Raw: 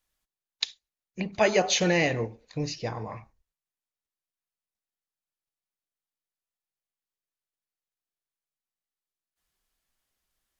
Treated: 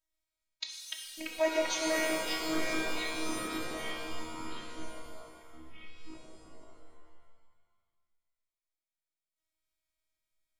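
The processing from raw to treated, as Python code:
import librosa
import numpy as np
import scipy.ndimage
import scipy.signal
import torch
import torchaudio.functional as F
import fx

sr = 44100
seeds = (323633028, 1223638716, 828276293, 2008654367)

y = fx.echo_pitch(x, sr, ms=132, semitones=-4, count=3, db_per_echo=-3.0)
y = fx.robotise(y, sr, hz=318.0)
y = fx.rev_shimmer(y, sr, seeds[0], rt60_s=1.5, semitones=7, shimmer_db=-2, drr_db=2.0)
y = y * librosa.db_to_amplitude(-8.0)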